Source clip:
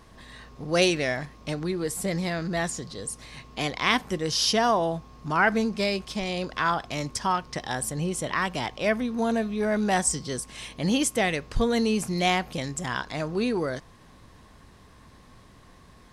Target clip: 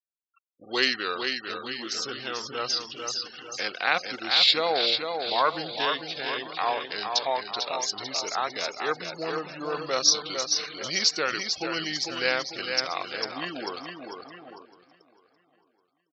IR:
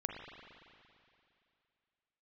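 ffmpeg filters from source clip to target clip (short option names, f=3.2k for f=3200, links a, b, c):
-filter_complex "[0:a]lowpass=f=6.8k:t=q:w=4.3,asplit=2[a][b];[b]aecho=0:1:446|892|1338|1784|2230|2676:0.531|0.255|0.122|0.0587|0.0282|0.0135[c];[a][c]amix=inputs=2:normalize=0,acrusher=bits=5:mix=0:aa=0.5,asetrate=31183,aresample=44100,atempo=1.41421,afftfilt=real='re*gte(hypot(re,im),0.0158)':imag='im*gte(hypot(re,im),0.0158)':win_size=1024:overlap=0.75,highpass=500,asplit=2[d][e];[e]adelay=1056,lowpass=f=3.4k:p=1,volume=-22dB,asplit=2[f][g];[g]adelay=1056,lowpass=f=3.4k:p=1,volume=0.2[h];[f][h]amix=inputs=2:normalize=0[i];[d][i]amix=inputs=2:normalize=0,volume=-1dB"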